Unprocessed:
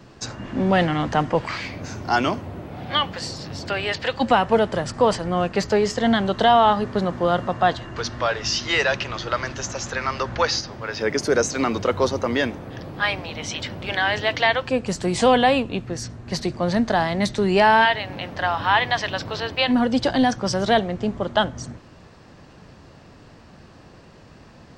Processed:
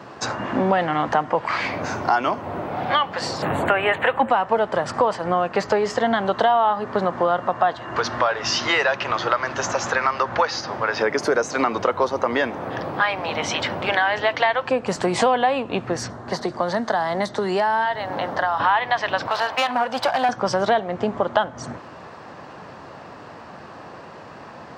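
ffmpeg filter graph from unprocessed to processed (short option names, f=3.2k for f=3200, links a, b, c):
-filter_complex "[0:a]asettb=1/sr,asplit=3[a][b][c];[a]atrim=end=3.424[d];[b]atrim=start=3.42:end=4.3,asetpts=PTS-STARTPTS,afade=t=in:d=0.004:c=qsin,afade=t=out:st=0.876:d=0.004:c=qsin,highshelf=f=6.1k:g=7.5,acontrast=67,asuperstop=centerf=5200:order=4:qfactor=0.8[e];[c]atrim=start=4.296[f];[d][e]acrossfade=d=0.004:c1=hsin:c2=qsin[g];[g][f]acrossfade=d=0.004:c1=qsin:c2=hsin,asettb=1/sr,asplit=3[h][i][j];[h]atrim=end=16.104[k];[i]atrim=start=16.1:end=18.6,asetpts=PTS-STARTPTS,afade=t=in:d=0.004:c=qsin,afade=t=out:st=2.496:d=0.004:c=qsin,equalizer=f=2.5k:t=o:w=0.42:g=-10.5,acrossover=split=220|1700|6600[l][m][n][o];[l]acompressor=threshold=-39dB:ratio=3[p];[m]acompressor=threshold=-31dB:ratio=3[q];[n]acompressor=threshold=-38dB:ratio=3[r];[o]acompressor=threshold=-49dB:ratio=3[s];[p][q][r][s]amix=inputs=4:normalize=0[t];[j]atrim=start=18.596[u];[k][t]acrossfade=d=0.004:c1=hsin:c2=qsin[v];[v][u]acrossfade=d=0.004:c1=qsin:c2=hsin,asettb=1/sr,asplit=3[w][x][y];[w]atrim=end=19.274[z];[x]atrim=start=19.27:end=20.29,asetpts=PTS-STARTPTS,afade=t=in:d=0.004:c=qsin,afade=t=out:st=1.016:d=0.004:c=qsin,highpass=59,lowshelf=f=520:t=q:w=1.5:g=-10,aeval=exprs='clip(val(0),-1,0.0447)':c=same[aa];[y]atrim=start=20.286[ab];[z][aa]acrossfade=d=0.004:c1=hsin:c2=qsin[ac];[ac][ab]acrossfade=d=0.004:c1=qsin:c2=hsin,highpass=95,equalizer=f=960:w=0.48:g=14,acompressor=threshold=-18dB:ratio=4"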